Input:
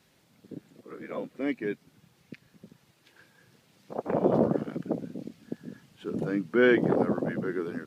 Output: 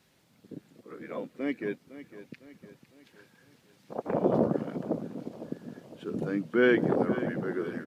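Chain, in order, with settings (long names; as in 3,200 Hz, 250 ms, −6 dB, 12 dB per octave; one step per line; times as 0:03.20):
repeating echo 506 ms, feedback 49%, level −14.5 dB
level −1.5 dB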